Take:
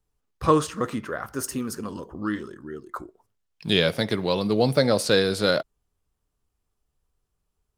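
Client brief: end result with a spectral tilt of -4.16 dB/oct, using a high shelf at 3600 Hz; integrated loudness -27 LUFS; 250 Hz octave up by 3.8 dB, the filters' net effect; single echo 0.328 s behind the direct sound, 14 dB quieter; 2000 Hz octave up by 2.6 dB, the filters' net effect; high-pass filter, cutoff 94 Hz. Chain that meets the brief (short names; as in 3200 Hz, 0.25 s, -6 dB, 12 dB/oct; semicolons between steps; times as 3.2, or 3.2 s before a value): HPF 94 Hz; bell 250 Hz +5 dB; bell 2000 Hz +4.5 dB; high shelf 3600 Hz -4 dB; echo 0.328 s -14 dB; gain -4.5 dB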